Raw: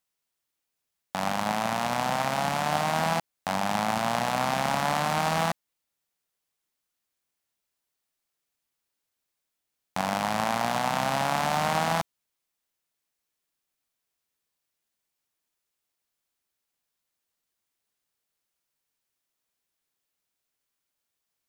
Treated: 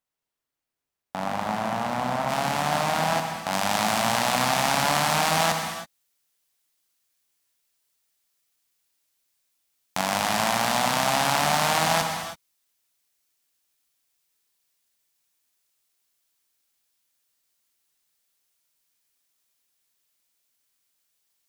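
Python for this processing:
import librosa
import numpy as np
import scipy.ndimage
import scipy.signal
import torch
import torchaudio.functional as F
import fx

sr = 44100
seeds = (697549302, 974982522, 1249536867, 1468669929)

y = fx.high_shelf(x, sr, hz=2200.0, db=fx.steps((0.0, -7.5), (2.28, 2.0), (3.51, 8.5)))
y = fx.rev_gated(y, sr, seeds[0], gate_ms=350, shape='flat', drr_db=3.5)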